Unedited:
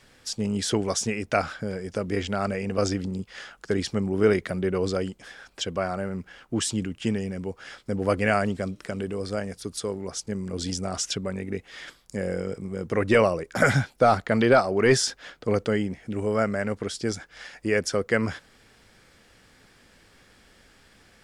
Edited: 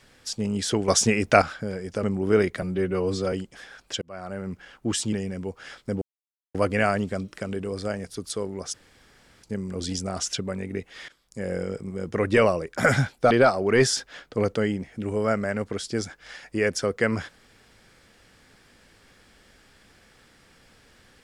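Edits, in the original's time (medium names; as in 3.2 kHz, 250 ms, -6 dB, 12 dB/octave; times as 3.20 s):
0.88–1.42 s: gain +6.5 dB
2.03–3.94 s: delete
4.53–5.00 s: stretch 1.5×
5.69–6.19 s: fade in
6.80–7.13 s: delete
8.02 s: insert silence 0.53 s
10.21 s: insert room tone 0.70 s
11.86–12.31 s: fade in, from -17.5 dB
14.08–14.41 s: delete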